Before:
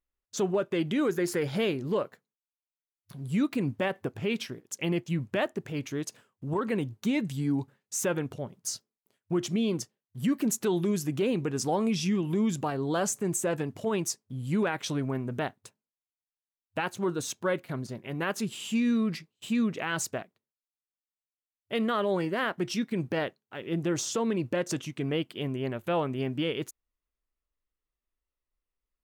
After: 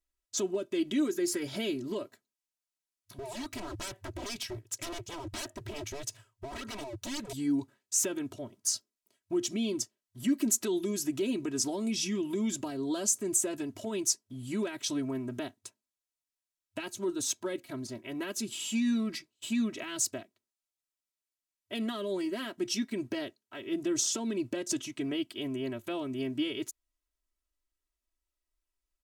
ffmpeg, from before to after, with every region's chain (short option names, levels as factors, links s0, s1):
-filter_complex "[0:a]asettb=1/sr,asplit=3[s0][s1][s2];[s0]atrim=end=3.184[s3];[s1]atrim=start=3.18:end=7.33,asetpts=PTS-STARTPTS,afade=t=in:d=0.004:c=qsin,afade=t=out:st=4.146:d=0.004:c=qsin,lowshelf=f=160:t=q:w=3:g=12,aeval=exprs='0.0282*(abs(mod(val(0)/0.0282+3,4)-2)-1)':c=same[s4];[s2]atrim=start=7.326[s5];[s3][s4]acrossfade=d=0.004:c1=hsin:c2=qsin[s6];[s6][s5]acrossfade=d=0.004:c1=qsin:c2=hsin,equalizer=f=7200:t=o:w=1.9:g=6.5,aecho=1:1:3.1:0.93,acrossover=split=430|3000[s7][s8][s9];[s8]acompressor=threshold=0.0126:ratio=6[s10];[s7][s10][s9]amix=inputs=3:normalize=0,volume=0.596"